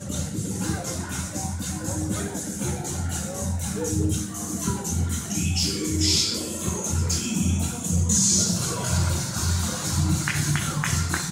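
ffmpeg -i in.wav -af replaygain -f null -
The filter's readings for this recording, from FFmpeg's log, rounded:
track_gain = +7.1 dB
track_peak = 0.307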